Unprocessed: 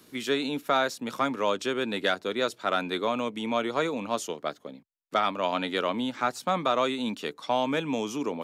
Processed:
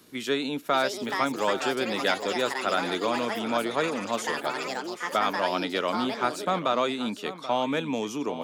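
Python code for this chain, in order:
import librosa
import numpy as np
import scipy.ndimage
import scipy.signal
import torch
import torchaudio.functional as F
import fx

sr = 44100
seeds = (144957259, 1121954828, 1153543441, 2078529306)

y = fx.echo_pitch(x, sr, ms=629, semitones=6, count=3, db_per_echo=-6.0)
y = y + 10.0 ** (-13.5 / 20.0) * np.pad(y, (int(782 * sr / 1000.0), 0))[:len(y)]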